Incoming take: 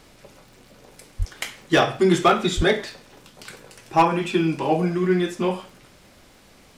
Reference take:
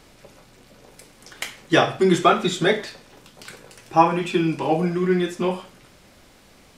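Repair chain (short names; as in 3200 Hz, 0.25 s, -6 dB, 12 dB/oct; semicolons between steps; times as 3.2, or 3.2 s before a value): clip repair -9 dBFS; de-click; 1.18–1.3 HPF 140 Hz 24 dB/oct; 2.56–2.68 HPF 140 Hz 24 dB/oct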